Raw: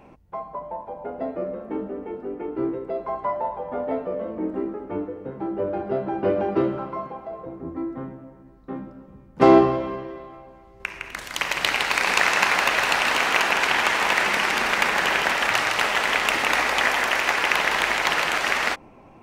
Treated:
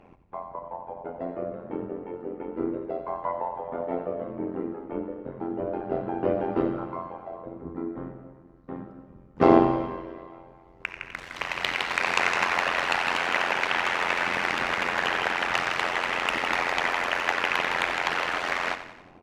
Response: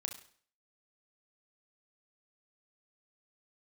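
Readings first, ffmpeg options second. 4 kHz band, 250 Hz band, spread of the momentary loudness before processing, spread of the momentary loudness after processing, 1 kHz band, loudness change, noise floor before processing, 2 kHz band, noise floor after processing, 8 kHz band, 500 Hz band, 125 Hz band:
-6.5 dB, -3.0 dB, 16 LU, 15 LU, -3.5 dB, -5.0 dB, -49 dBFS, -5.0 dB, -52 dBFS, -10.5 dB, -4.0 dB, -2.0 dB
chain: -af "aemphasis=mode=reproduction:type=50kf,tremolo=f=87:d=0.889,aecho=1:1:90|180|270|360|450:0.251|0.131|0.0679|0.0353|0.0184"

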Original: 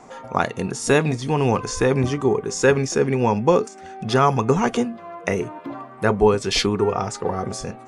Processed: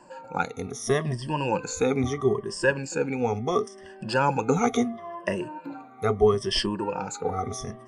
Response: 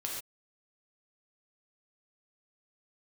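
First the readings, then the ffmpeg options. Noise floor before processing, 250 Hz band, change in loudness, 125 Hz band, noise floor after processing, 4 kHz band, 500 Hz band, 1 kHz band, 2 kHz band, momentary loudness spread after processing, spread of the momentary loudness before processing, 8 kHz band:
-41 dBFS, -6.0 dB, -6.0 dB, -7.5 dB, -47 dBFS, -4.5 dB, -5.5 dB, -5.5 dB, -5.0 dB, 10 LU, 10 LU, -6.0 dB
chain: -af "afftfilt=real='re*pow(10,19/40*sin(2*PI*(1.3*log(max(b,1)*sr/1024/100)/log(2)-(-0.74)*(pts-256)/sr)))':imag='im*pow(10,19/40*sin(2*PI*(1.3*log(max(b,1)*sr/1024/100)/log(2)-(-0.74)*(pts-256)/sr)))':win_size=1024:overlap=0.75,dynaudnorm=f=150:g=11:m=11.5dB,volume=-8.5dB"

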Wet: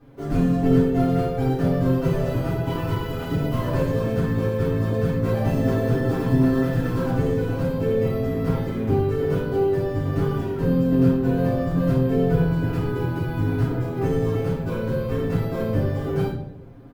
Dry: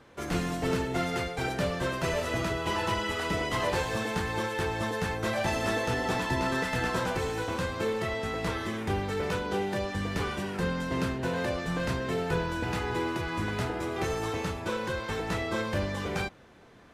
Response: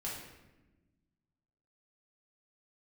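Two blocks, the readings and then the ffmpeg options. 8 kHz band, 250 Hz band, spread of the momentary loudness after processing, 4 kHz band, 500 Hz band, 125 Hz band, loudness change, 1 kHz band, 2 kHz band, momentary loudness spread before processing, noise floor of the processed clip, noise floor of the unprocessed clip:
n/a, +11.0 dB, 6 LU, -6.0 dB, +7.5 dB, +13.0 dB, +8.0 dB, -0.5 dB, -4.5 dB, 3 LU, -30 dBFS, -39 dBFS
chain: -filter_complex "[0:a]acrusher=samples=3:mix=1:aa=0.000001,tiltshelf=f=770:g=8,aecho=1:1:7.4:0.8[a];[1:a]atrim=start_sample=2205,asetrate=74970,aresample=44100[b];[a][b]afir=irnorm=-1:irlink=0,volume=3dB"

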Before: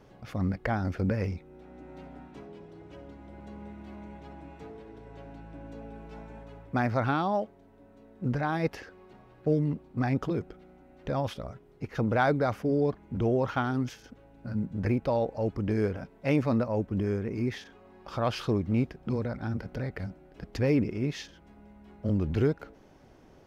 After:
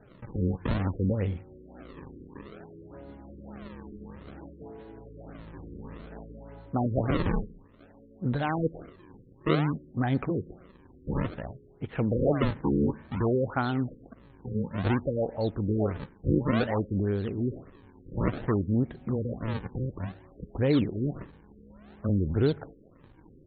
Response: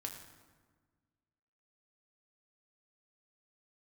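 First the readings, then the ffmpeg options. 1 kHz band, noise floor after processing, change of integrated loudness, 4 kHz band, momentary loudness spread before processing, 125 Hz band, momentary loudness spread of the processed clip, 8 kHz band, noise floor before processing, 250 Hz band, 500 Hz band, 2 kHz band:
-2.5 dB, -56 dBFS, +0.5 dB, -0.5 dB, 20 LU, +1.5 dB, 20 LU, n/a, -56 dBFS, +1.0 dB, -0.5 dB, -2.5 dB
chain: -filter_complex "[0:a]acrusher=samples=39:mix=1:aa=0.000001:lfo=1:lforange=62.4:lforate=0.57,asplit=2[a][b];[b]highshelf=f=2.9k:t=q:w=3:g=-12.5[c];[1:a]atrim=start_sample=2205,afade=t=out:st=0.28:d=0.01,atrim=end_sample=12789[d];[c][d]afir=irnorm=-1:irlink=0,volume=-14.5dB[e];[a][e]amix=inputs=2:normalize=0,afftfilt=real='re*lt(b*sr/1024,530*pow(4500/530,0.5+0.5*sin(2*PI*1.7*pts/sr)))':imag='im*lt(b*sr/1024,530*pow(4500/530,0.5+0.5*sin(2*PI*1.7*pts/sr)))':win_size=1024:overlap=0.75"

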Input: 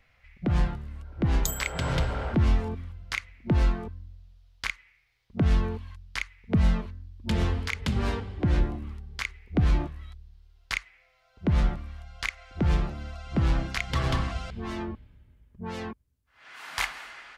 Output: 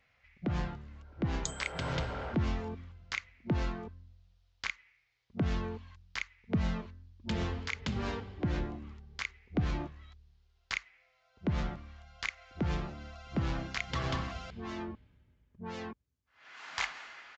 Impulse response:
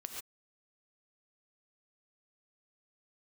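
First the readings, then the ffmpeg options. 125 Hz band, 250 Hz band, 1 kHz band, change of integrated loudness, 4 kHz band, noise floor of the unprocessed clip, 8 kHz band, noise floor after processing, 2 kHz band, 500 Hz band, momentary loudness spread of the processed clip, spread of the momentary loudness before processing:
-9.0 dB, -6.0 dB, -5.0 dB, -8.0 dB, -5.0 dB, -66 dBFS, -7.0 dB, -72 dBFS, -5.0 dB, -5.5 dB, 13 LU, 14 LU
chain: -af "highpass=f=110:p=1,aresample=16000,aresample=44100,volume=-5dB"

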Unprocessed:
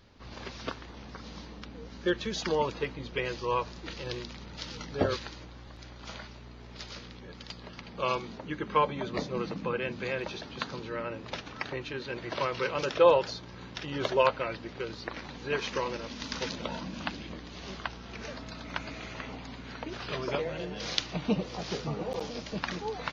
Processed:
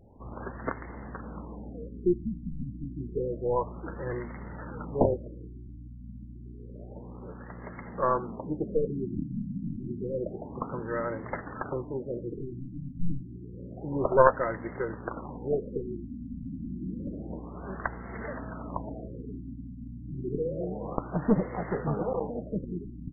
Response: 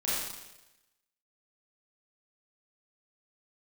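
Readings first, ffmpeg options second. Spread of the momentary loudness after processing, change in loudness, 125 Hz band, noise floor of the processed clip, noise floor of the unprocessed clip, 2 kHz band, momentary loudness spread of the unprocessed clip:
16 LU, +0.5 dB, +4.5 dB, -44 dBFS, -47 dBFS, -5.0 dB, 16 LU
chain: -af "aeval=exprs='0.631*(cos(1*acos(clip(val(0)/0.631,-1,1)))-cos(1*PI/2))+0.158*(cos(4*acos(clip(val(0)/0.631,-1,1)))-cos(4*PI/2))':c=same,afftfilt=real='re*lt(b*sr/1024,290*pow(2200/290,0.5+0.5*sin(2*PI*0.29*pts/sr)))':imag='im*lt(b*sr/1024,290*pow(2200/290,0.5+0.5*sin(2*PI*0.29*pts/sr)))':win_size=1024:overlap=0.75,volume=4.5dB"

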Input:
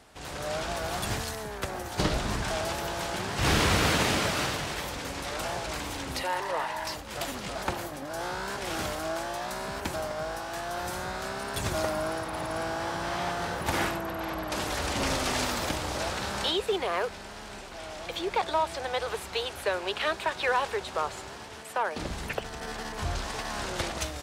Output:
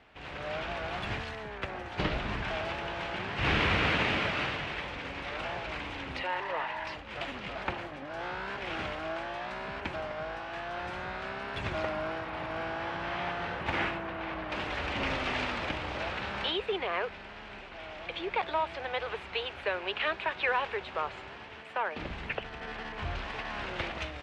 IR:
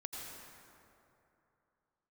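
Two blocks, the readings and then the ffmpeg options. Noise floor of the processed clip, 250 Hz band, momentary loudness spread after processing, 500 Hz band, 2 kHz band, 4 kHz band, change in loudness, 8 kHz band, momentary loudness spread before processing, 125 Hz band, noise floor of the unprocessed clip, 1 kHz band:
-45 dBFS, -4.5 dB, 9 LU, -4.0 dB, 0.0 dB, -4.5 dB, -3.0 dB, -21.0 dB, 8 LU, -4.5 dB, -42 dBFS, -3.5 dB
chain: -af "lowpass=f=2.6k:t=q:w=2,volume=-4.5dB"

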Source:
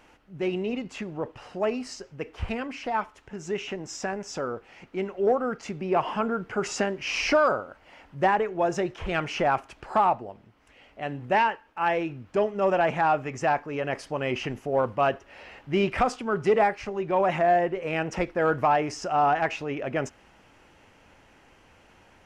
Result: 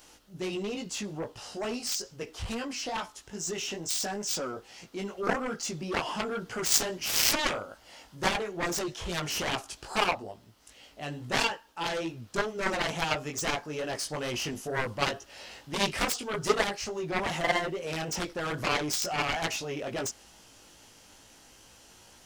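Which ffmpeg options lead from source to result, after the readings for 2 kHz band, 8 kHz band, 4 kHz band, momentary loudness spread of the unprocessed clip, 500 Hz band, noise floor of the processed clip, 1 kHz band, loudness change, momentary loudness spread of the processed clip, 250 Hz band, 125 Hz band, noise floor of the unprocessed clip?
-1.5 dB, +10.5 dB, +6.5 dB, 13 LU, -8.0 dB, -56 dBFS, -8.5 dB, -4.0 dB, 11 LU, -5.0 dB, -3.5 dB, -58 dBFS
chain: -af "flanger=delay=17:depth=3:speed=2.3,aexciter=amount=5.7:drive=5.7:freq=3.4k,aeval=exprs='0.335*(cos(1*acos(clip(val(0)/0.335,-1,1)))-cos(1*PI/2))+0.106*(cos(7*acos(clip(val(0)/0.335,-1,1)))-cos(7*PI/2))':c=same,volume=-1dB"

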